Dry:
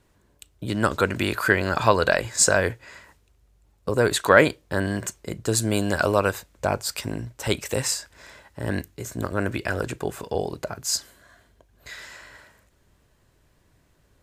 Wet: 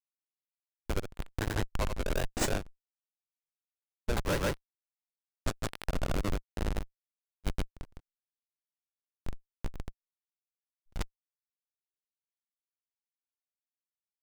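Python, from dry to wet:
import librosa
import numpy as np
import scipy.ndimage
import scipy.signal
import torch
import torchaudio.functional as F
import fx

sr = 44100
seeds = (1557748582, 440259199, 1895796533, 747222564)

y = fx.highpass(x, sr, hz=220.0, slope=6)
y = fx.low_shelf(y, sr, hz=310.0, db=-10.0)
y = fx.schmitt(y, sr, flips_db=-15.0)
y = fx.granulator(y, sr, seeds[0], grain_ms=221.0, per_s=14.0, spray_ms=107.0, spread_st=0)
y = y * librosa.db_to_amplitude(5.0)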